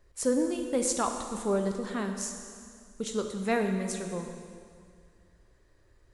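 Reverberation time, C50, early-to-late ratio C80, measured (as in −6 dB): 2.2 s, 6.0 dB, 7.0 dB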